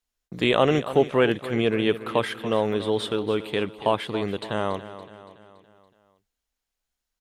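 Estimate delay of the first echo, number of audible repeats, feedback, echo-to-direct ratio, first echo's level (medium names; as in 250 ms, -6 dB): 283 ms, 4, 52%, -12.5 dB, -14.0 dB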